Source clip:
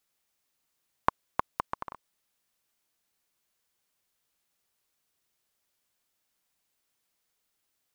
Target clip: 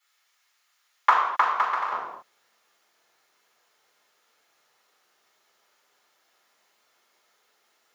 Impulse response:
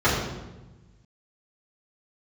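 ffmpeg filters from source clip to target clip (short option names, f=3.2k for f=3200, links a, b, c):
-filter_complex "[0:a]asetnsamples=n=441:p=0,asendcmd='1.89 highpass f 530',highpass=1.4k,acontrast=82[a];[1:a]atrim=start_sample=2205,afade=t=out:st=0.32:d=0.01,atrim=end_sample=14553[b];[a][b]afir=irnorm=-1:irlink=0,volume=-8dB"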